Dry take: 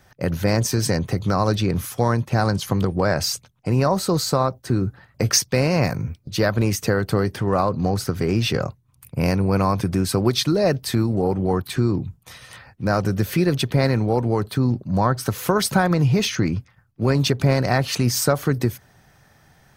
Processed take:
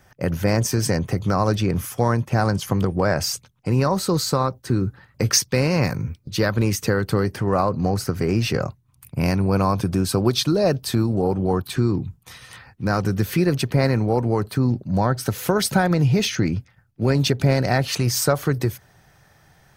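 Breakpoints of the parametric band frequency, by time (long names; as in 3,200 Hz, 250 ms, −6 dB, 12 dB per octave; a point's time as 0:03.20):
parametric band −7 dB 0.29 octaves
4,000 Hz
from 0:03.34 670 Hz
from 0:07.25 3,500 Hz
from 0:08.66 490 Hz
from 0:09.46 2,000 Hz
from 0:11.75 600 Hz
from 0:13.38 3,500 Hz
from 0:14.68 1,100 Hz
from 0:17.88 240 Hz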